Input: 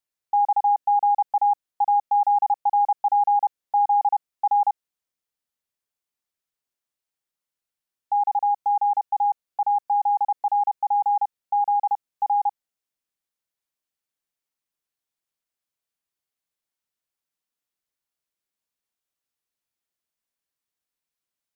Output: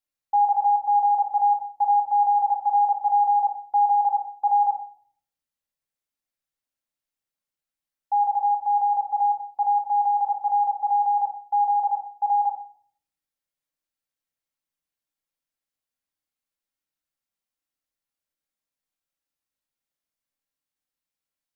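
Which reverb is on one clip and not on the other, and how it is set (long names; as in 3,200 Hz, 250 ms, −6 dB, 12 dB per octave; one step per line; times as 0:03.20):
rectangular room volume 660 cubic metres, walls furnished, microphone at 2.2 metres
level −5 dB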